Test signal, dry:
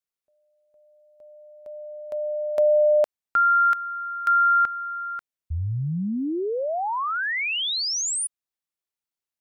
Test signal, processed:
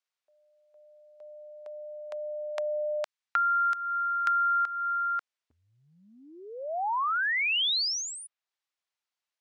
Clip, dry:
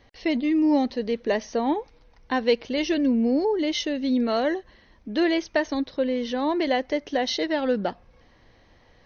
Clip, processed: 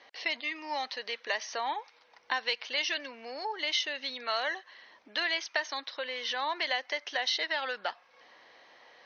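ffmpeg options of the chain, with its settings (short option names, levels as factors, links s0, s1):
-filter_complex "[0:a]acrossover=split=870|4200[s0][s1][s2];[s0]acompressor=threshold=0.00501:ratio=4[s3];[s1]acompressor=threshold=0.02:ratio=4[s4];[s2]acompressor=threshold=0.01:ratio=4[s5];[s3][s4][s5]amix=inputs=3:normalize=0,highpass=650,lowpass=5700,volume=1.78"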